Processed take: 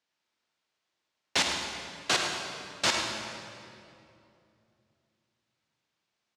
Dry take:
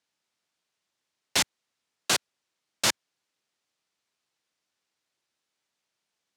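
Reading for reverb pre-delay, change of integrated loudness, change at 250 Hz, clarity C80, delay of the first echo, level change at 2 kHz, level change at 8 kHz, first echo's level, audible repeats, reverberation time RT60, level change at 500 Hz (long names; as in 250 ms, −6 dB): 24 ms, −3.0 dB, +1.5 dB, 2.5 dB, 105 ms, +1.5 dB, −4.0 dB, −8.5 dB, 1, 2.7 s, +2.0 dB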